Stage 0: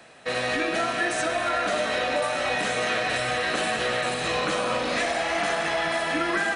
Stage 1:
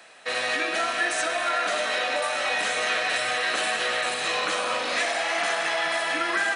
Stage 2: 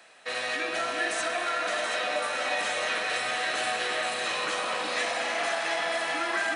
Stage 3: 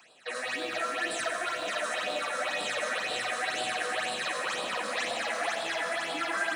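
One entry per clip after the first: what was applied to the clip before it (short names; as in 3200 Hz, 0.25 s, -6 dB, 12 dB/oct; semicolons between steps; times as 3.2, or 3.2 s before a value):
HPF 910 Hz 6 dB/oct; gain +2.5 dB
echo with dull and thin repeats by turns 0.365 s, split 1100 Hz, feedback 55%, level -2.5 dB; gain -4.5 dB
phaser stages 8, 2 Hz, lowest notch 100–2000 Hz; lo-fi delay 90 ms, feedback 80%, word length 9-bit, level -11.5 dB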